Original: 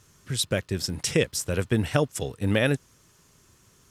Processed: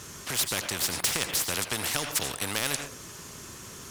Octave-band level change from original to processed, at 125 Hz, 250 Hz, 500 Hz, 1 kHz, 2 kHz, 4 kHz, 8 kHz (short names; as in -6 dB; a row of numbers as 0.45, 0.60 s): -13.5, -11.5, -11.0, +1.5, -1.0, +2.5, +5.0 dB